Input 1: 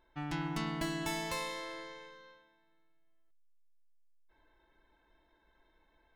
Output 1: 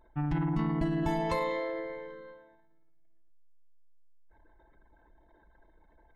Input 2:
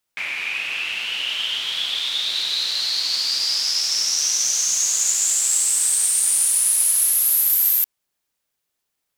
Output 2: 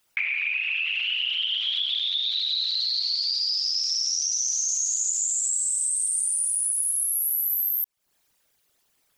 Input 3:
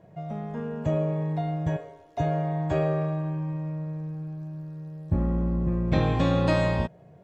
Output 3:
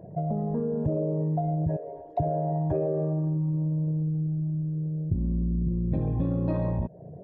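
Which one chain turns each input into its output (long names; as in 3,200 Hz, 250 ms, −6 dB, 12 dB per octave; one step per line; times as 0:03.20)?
spectral envelope exaggerated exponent 2
downward compressor 5 to 1, threshold −34 dBFS
level +9 dB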